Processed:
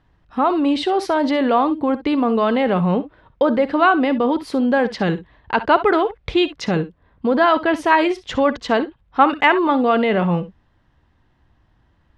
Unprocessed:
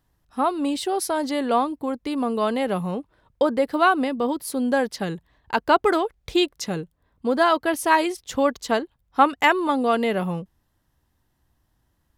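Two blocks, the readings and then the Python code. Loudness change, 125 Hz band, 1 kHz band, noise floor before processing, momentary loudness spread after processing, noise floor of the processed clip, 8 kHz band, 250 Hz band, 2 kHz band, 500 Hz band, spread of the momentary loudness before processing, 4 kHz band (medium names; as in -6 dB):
+4.5 dB, +8.5 dB, +4.0 dB, -70 dBFS, 8 LU, -60 dBFS, no reading, +6.0 dB, +4.5 dB, +4.5 dB, 11 LU, +2.5 dB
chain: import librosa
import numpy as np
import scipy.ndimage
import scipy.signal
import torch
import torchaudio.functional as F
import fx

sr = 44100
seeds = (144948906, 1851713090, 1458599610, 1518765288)

p1 = scipy.signal.sosfilt(scipy.signal.cheby1(2, 1.0, 2700.0, 'lowpass', fs=sr, output='sos'), x)
p2 = fx.over_compress(p1, sr, threshold_db=-28.0, ratio=-1.0)
p3 = p1 + F.gain(torch.from_numpy(p2), -2.5).numpy()
p4 = fx.room_early_taps(p3, sr, ms=(57, 67), db=(-17.0, -17.0))
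y = F.gain(torch.from_numpy(p4), 3.0).numpy()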